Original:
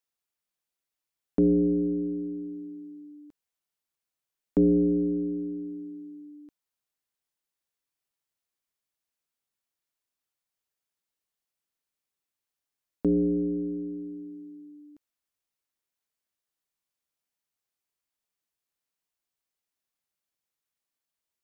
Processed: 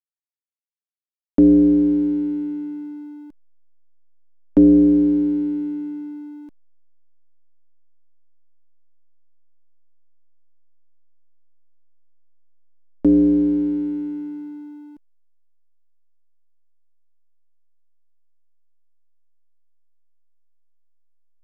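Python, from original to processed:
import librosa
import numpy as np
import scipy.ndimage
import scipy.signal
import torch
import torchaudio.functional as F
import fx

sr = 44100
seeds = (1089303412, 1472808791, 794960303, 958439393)

y = x + 0.68 * np.pad(x, (int(3.4 * sr / 1000.0), 0))[:len(x)]
y = fx.backlash(y, sr, play_db=-49.0)
y = F.gain(torch.from_numpy(y), 6.5).numpy()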